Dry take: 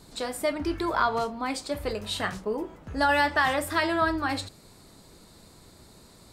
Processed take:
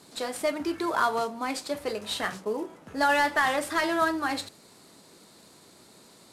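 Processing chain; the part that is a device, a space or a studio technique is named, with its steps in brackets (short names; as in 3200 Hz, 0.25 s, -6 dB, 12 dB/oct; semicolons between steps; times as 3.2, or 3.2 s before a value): early wireless headset (HPF 200 Hz 12 dB/oct; CVSD 64 kbps)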